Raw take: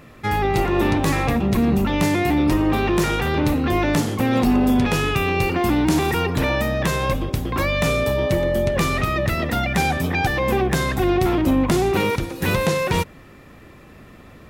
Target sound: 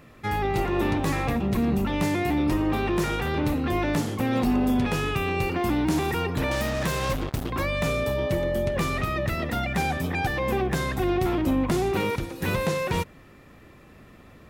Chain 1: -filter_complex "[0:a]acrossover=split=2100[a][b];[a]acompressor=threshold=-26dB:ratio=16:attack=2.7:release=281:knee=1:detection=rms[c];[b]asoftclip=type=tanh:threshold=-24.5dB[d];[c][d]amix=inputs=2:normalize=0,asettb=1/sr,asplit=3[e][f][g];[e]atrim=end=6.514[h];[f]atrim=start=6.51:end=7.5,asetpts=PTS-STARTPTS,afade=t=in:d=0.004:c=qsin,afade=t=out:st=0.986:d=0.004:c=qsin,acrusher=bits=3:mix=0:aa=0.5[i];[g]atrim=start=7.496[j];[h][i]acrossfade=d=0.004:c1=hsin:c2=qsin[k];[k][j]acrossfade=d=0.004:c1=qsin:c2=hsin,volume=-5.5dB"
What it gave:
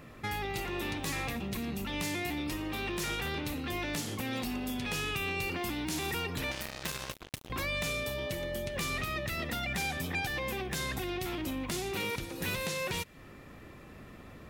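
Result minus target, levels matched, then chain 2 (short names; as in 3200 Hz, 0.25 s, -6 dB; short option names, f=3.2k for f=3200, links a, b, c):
compressor: peak gain reduction +14.5 dB
-filter_complex "[0:a]acrossover=split=2100[a][b];[b]asoftclip=type=tanh:threshold=-24.5dB[c];[a][c]amix=inputs=2:normalize=0,asettb=1/sr,asplit=3[d][e][f];[d]atrim=end=6.514[g];[e]atrim=start=6.51:end=7.5,asetpts=PTS-STARTPTS,afade=t=in:d=0.004:c=qsin,afade=t=out:st=0.986:d=0.004:c=qsin,acrusher=bits=3:mix=0:aa=0.5[h];[f]atrim=start=7.496[i];[g][h]acrossfade=d=0.004:c1=hsin:c2=qsin[j];[j][i]acrossfade=d=0.004:c1=qsin:c2=hsin,volume=-5.5dB"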